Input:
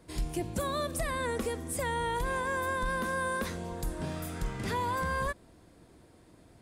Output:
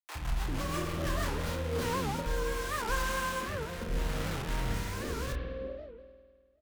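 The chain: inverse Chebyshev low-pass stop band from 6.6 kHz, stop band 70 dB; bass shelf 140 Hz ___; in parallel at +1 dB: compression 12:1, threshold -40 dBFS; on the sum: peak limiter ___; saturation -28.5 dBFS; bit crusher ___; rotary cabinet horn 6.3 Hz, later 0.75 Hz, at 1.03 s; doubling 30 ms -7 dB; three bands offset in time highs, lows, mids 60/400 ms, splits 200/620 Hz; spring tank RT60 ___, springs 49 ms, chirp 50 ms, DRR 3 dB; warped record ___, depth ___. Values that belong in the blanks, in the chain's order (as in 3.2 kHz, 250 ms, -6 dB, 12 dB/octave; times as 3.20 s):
+4.5 dB, -22 dBFS, 6-bit, 1.7 s, 78 rpm, 250 cents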